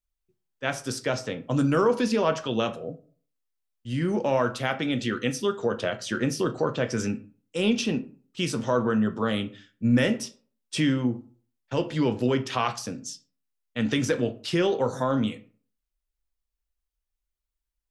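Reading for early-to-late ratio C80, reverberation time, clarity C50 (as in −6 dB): 20.5 dB, 0.45 s, 16.0 dB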